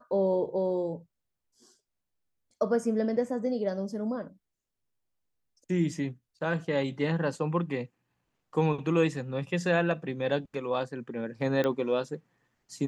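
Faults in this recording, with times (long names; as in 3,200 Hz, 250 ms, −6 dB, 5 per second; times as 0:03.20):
0:11.64: click −17 dBFS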